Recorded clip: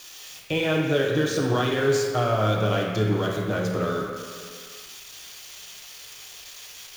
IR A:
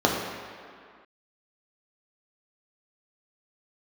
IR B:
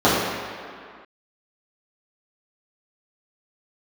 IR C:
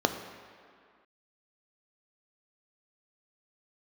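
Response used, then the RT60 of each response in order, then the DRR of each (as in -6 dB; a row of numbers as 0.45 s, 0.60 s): A; 2.1 s, 2.1 s, 2.1 s; -2.5 dB, -11.5 dB, 6.0 dB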